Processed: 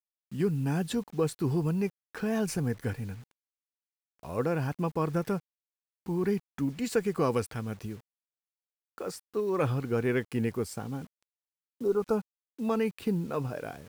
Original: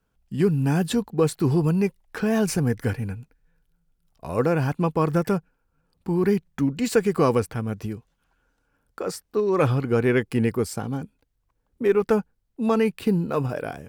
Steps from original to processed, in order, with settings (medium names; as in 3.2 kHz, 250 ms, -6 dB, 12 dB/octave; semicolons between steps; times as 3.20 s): 7.32–7.82 s: peaking EQ 5 kHz +5.5 dB 2.9 oct; 11.32–12.14 s: spectral replace 1.5–3.7 kHz; bit crusher 8-bit; trim -7.5 dB